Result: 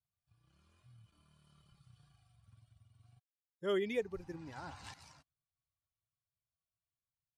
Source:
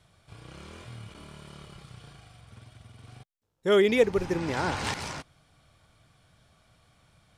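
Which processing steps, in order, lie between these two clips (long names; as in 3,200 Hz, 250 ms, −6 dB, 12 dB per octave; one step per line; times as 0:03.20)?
spectral dynamics exaggerated over time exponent 1.5
source passing by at 0:02.45, 8 m/s, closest 5.2 metres
level −5 dB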